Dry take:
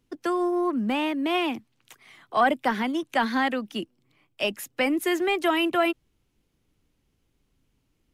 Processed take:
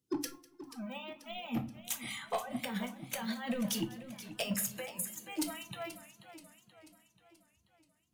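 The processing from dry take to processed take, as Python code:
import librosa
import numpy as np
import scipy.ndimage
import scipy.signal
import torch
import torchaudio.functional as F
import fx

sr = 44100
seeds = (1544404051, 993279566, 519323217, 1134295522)

p1 = scipy.signal.sosfilt(scipy.signal.butter(4, 81.0, 'highpass', fs=sr, output='sos'), x)
p2 = fx.bass_treble(p1, sr, bass_db=9, treble_db=15)
p3 = (np.mod(10.0 ** (19.0 / 20.0) * p2 + 1.0, 2.0) - 1.0) / 10.0 ** (19.0 / 20.0)
p4 = p2 + F.gain(torch.from_numpy(p3), -8.0).numpy()
p5 = fx.peak_eq(p4, sr, hz=390.0, db=4.5, octaves=0.91)
p6 = fx.over_compress(p5, sr, threshold_db=-27.0, ratio=-0.5)
p7 = fx.noise_reduce_blind(p6, sr, reduce_db=26)
p8 = np.clip(p7, -10.0 ** (-22.5 / 20.0), 10.0 ** (-22.5 / 20.0))
p9 = p8 + fx.echo_feedback(p8, sr, ms=199, feedback_pct=30, wet_db=-22.5, dry=0)
p10 = fx.room_shoebox(p9, sr, seeds[0], volume_m3=180.0, walls='furnished', distance_m=0.8)
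p11 = fx.echo_warbled(p10, sr, ms=483, feedback_pct=53, rate_hz=2.8, cents=129, wet_db=-13.5)
y = F.gain(torch.from_numpy(p11), -6.5).numpy()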